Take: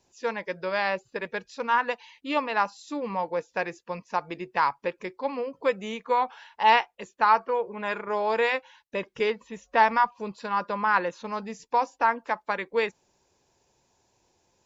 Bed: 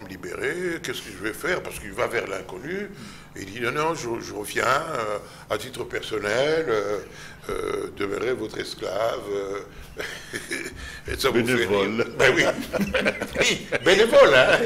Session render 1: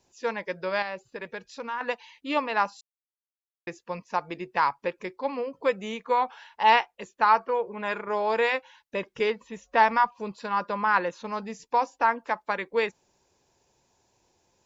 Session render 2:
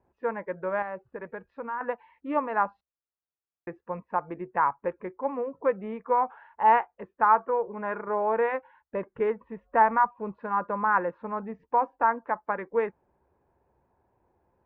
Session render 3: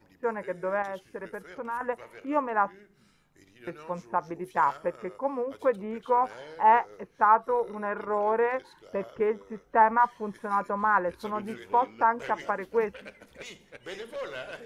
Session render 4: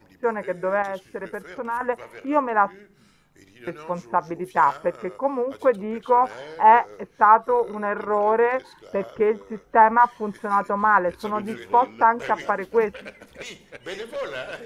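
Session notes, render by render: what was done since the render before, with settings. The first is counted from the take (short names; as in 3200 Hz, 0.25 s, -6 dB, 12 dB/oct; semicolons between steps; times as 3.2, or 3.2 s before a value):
0.82–1.81 compressor 2:1, threshold -35 dBFS; 2.81–3.67 mute
LPF 1600 Hz 24 dB/oct; bell 68 Hz +10 dB 0.32 oct
add bed -23 dB
gain +6 dB; limiter -3 dBFS, peak gain reduction 1 dB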